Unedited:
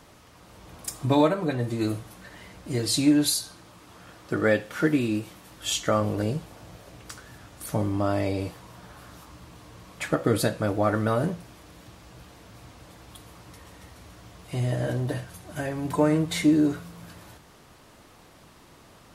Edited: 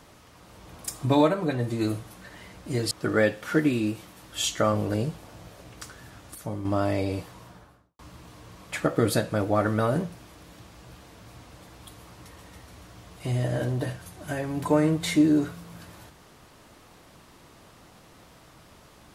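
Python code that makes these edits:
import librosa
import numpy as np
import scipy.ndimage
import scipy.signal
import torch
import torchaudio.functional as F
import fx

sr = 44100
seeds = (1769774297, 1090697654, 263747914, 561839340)

y = fx.studio_fade_out(x, sr, start_s=8.64, length_s=0.63)
y = fx.edit(y, sr, fx.cut(start_s=2.91, length_s=1.28),
    fx.clip_gain(start_s=7.63, length_s=0.3, db=-7.0), tone=tone)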